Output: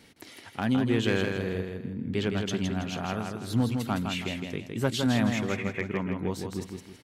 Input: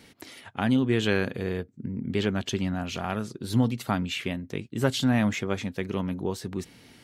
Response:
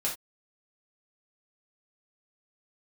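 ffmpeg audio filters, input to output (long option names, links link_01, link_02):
-filter_complex "[0:a]asettb=1/sr,asplit=3[link_01][link_02][link_03];[link_01]atrim=end=5.494[link_04];[link_02]atrim=start=5.49:end=6.18,asetpts=PTS-STARTPTS,afade=type=in:duration=0.004:curve=qsin,afade=type=out:start_time=0.686:duration=0.004:curve=qsin,highshelf=frequency=3200:width_type=q:width=3:gain=-13[link_05];[link_03]atrim=start=6.176[link_06];[link_04][link_05]acrossfade=duration=0.004:curve1=hsin:curve2=qsin[link_07];[link_07][link_06]acrossfade=duration=0.004:curve1=qsin:curve2=hsin,volume=14dB,asoftclip=hard,volume=-14dB,aecho=1:1:162|324|486|648:0.562|0.202|0.0729|0.0262,volume=-2.5dB"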